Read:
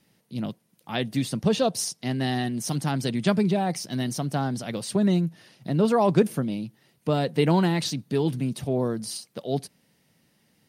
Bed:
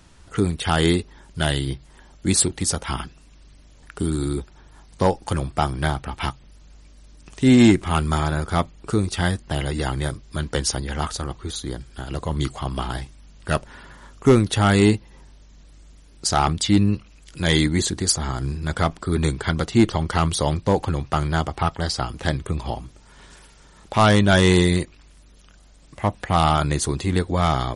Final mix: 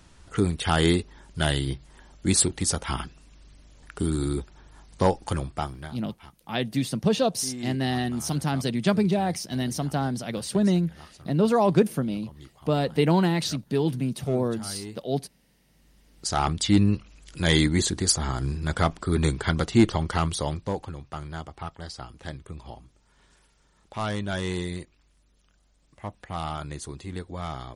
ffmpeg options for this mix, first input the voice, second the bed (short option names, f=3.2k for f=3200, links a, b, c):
-filter_complex "[0:a]adelay=5600,volume=0dB[a];[1:a]volume=18.5dB,afade=t=out:st=5.21:d=0.73:silence=0.0944061,afade=t=in:st=15.66:d=1.15:silence=0.0891251,afade=t=out:st=19.8:d=1.14:silence=0.251189[b];[a][b]amix=inputs=2:normalize=0"